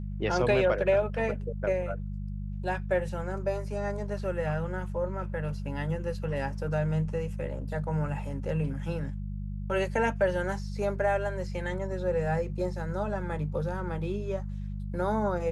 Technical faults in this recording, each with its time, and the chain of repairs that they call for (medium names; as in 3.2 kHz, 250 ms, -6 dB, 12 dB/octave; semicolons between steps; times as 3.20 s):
hum 50 Hz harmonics 4 -35 dBFS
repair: de-hum 50 Hz, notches 4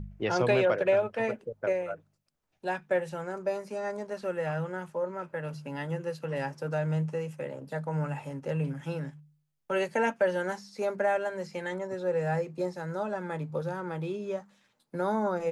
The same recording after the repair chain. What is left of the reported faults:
nothing left